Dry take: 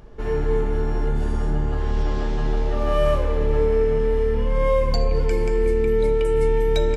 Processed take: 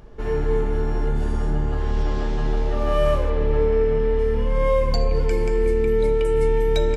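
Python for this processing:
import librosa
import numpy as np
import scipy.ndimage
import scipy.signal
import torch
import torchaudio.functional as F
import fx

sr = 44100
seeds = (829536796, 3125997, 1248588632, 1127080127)

y = fx.lowpass(x, sr, hz=5000.0, slope=12, at=(3.3, 4.19))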